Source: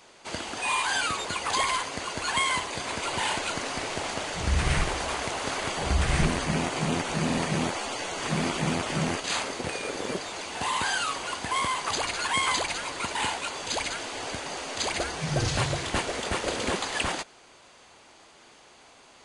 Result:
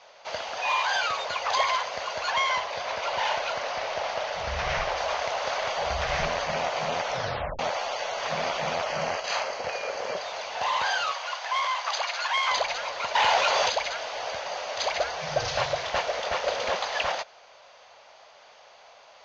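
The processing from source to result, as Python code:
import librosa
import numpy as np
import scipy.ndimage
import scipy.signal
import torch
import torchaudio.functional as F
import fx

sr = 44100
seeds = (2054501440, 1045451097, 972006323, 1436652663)

y = fx.resample_linear(x, sr, factor=3, at=(2.3, 4.97))
y = fx.notch(y, sr, hz=3600.0, q=5.8, at=(8.84, 10.17))
y = fx.highpass(y, sr, hz=760.0, slope=12, at=(11.12, 12.51))
y = fx.env_flatten(y, sr, amount_pct=70, at=(13.14, 13.69), fade=0.02)
y = fx.edit(y, sr, fx.tape_stop(start_s=7.08, length_s=0.51), tone=tone)
y = scipy.signal.sosfilt(scipy.signal.butter(12, 6300.0, 'lowpass', fs=sr, output='sos'), y)
y = fx.low_shelf_res(y, sr, hz=430.0, db=-10.5, q=3.0)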